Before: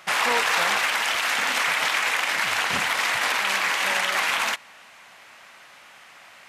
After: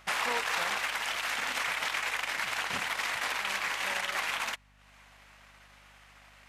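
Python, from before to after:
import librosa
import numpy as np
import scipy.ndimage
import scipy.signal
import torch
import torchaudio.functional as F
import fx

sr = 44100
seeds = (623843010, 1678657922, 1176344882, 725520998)

y = fx.transient(x, sr, attack_db=3, sustain_db=-10)
y = fx.add_hum(y, sr, base_hz=50, snr_db=29)
y = y * librosa.db_to_amplitude(-9.0)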